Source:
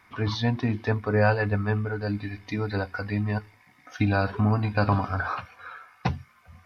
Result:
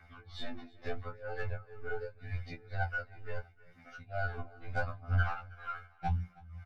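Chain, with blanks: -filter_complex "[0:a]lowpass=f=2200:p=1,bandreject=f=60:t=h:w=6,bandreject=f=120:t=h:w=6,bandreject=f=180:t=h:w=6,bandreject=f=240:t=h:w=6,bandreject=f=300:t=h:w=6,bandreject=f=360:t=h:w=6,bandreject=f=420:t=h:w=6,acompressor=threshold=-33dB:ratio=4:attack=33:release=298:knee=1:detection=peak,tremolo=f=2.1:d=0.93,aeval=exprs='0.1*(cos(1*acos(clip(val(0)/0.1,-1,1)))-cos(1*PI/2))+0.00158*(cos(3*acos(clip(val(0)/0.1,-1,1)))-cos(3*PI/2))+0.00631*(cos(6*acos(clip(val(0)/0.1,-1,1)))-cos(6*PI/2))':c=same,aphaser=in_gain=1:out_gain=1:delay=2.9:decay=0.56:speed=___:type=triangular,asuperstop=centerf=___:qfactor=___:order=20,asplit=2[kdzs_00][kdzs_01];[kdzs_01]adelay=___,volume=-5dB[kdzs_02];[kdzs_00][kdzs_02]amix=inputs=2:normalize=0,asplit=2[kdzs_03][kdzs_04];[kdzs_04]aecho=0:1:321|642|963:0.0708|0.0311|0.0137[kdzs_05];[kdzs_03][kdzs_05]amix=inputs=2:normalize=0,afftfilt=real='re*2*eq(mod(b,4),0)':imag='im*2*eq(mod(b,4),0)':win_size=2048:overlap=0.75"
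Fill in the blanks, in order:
0.79, 940, 6, 13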